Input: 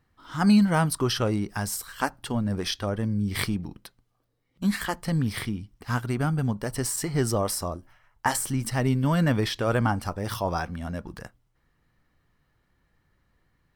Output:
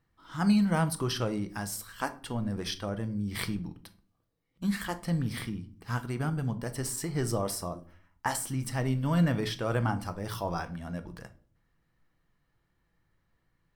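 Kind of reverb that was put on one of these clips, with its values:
rectangular room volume 440 cubic metres, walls furnished, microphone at 0.69 metres
level −6 dB

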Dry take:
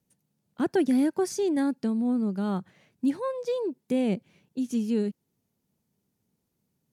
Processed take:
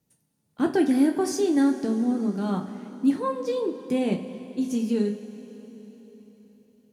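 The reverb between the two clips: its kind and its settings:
coupled-rooms reverb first 0.3 s, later 4.3 s, from −18 dB, DRR 2 dB
level +1 dB

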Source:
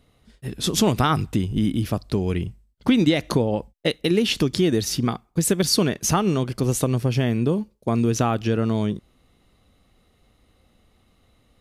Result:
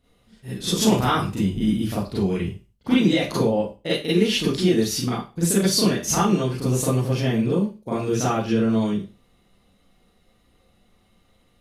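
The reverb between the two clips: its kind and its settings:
four-comb reverb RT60 0.31 s, combs from 32 ms, DRR −9.5 dB
level −9.5 dB

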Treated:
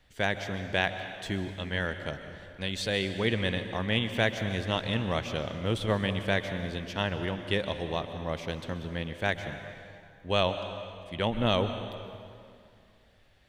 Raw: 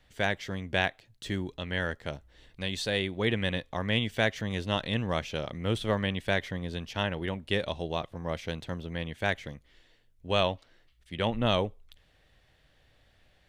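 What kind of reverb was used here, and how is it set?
dense smooth reverb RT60 2.4 s, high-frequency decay 0.8×, pre-delay 115 ms, DRR 8.5 dB

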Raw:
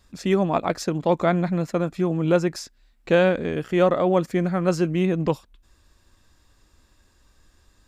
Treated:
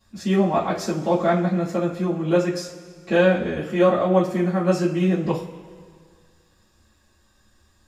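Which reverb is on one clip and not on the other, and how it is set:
coupled-rooms reverb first 0.26 s, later 2 s, from −19 dB, DRR −9 dB
level −9 dB

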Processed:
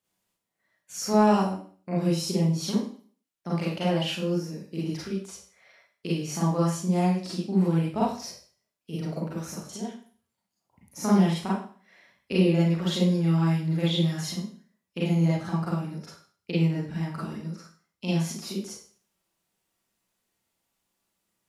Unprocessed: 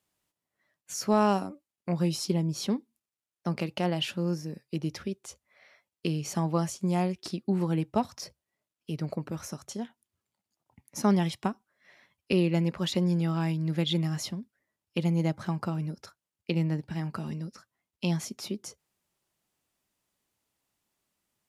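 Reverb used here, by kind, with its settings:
four-comb reverb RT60 0.45 s, combs from 33 ms, DRR −7 dB
level −5.5 dB

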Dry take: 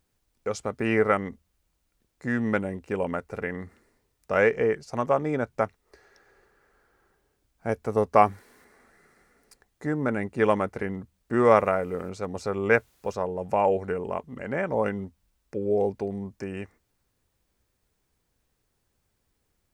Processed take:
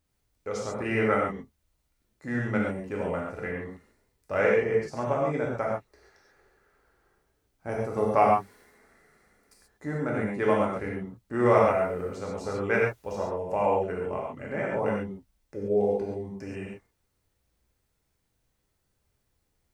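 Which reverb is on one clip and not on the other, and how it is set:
reverb whose tail is shaped and stops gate 160 ms flat, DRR −3.5 dB
level −6.5 dB

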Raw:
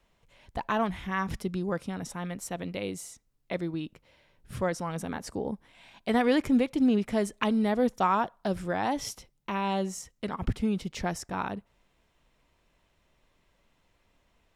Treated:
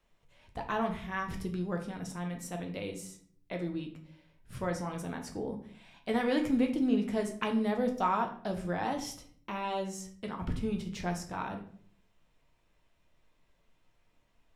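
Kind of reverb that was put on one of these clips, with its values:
rectangular room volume 66 cubic metres, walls mixed, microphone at 0.51 metres
level −6 dB

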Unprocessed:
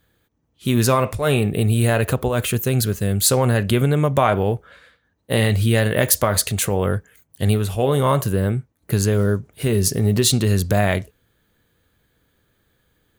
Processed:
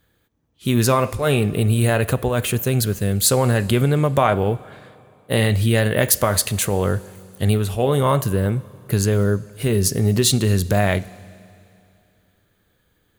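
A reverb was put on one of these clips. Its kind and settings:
four-comb reverb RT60 2.7 s, combs from 33 ms, DRR 19.5 dB

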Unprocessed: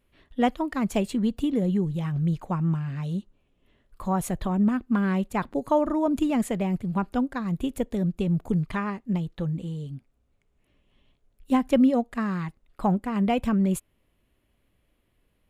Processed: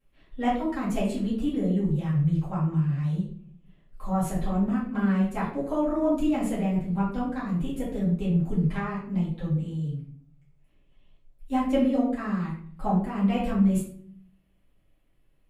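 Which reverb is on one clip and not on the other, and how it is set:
rectangular room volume 69 cubic metres, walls mixed, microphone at 2.2 metres
level −12.5 dB

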